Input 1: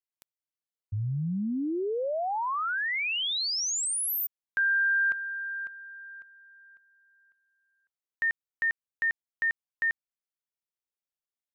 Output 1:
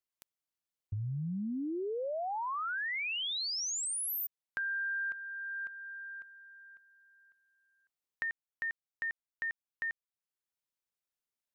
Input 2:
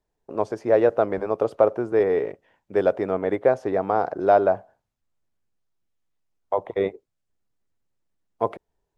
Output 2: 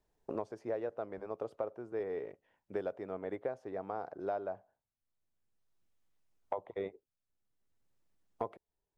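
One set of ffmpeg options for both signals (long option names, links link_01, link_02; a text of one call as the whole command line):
ffmpeg -i in.wav -af "acompressor=threshold=-34dB:ratio=6:attack=14:release=948:knee=1:detection=rms" out.wav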